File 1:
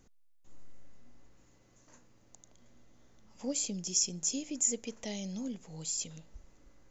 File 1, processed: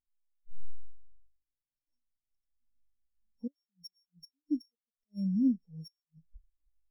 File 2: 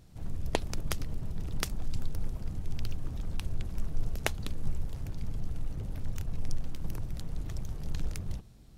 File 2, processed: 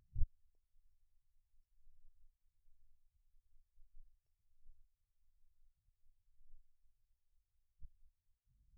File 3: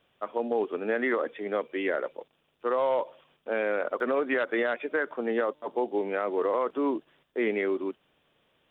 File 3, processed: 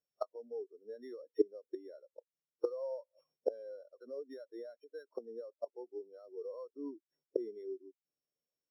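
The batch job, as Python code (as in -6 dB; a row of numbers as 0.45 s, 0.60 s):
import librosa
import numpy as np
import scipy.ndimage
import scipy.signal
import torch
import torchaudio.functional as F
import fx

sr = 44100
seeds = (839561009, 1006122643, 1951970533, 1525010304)

y = np.r_[np.sort(x[:len(x) // 8 * 8].reshape(-1, 8), axis=1).ravel(), x[len(x) // 8 * 8:]]
y = fx.gate_flip(y, sr, shuts_db=-28.0, range_db=-26)
y = fx.spectral_expand(y, sr, expansion=2.5)
y = y * 10.0 ** (7.5 / 20.0)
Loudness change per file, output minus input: 0.0 LU, -9.0 LU, -13.5 LU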